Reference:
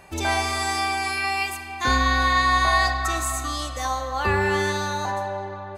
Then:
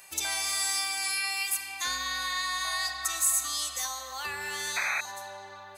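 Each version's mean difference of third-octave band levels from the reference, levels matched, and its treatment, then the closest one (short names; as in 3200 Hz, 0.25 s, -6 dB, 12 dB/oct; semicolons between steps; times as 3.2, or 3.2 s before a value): 9.5 dB: painted sound noise, 4.76–5.01, 540–2600 Hz -17 dBFS; compressor 2:1, threshold -29 dBFS, peak gain reduction 9 dB; pre-emphasis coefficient 0.97; gain +8 dB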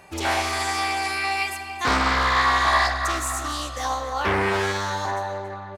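2.5 dB: HPF 85 Hz 6 dB/oct; echo 0.277 s -13.5 dB; Doppler distortion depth 0.57 ms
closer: second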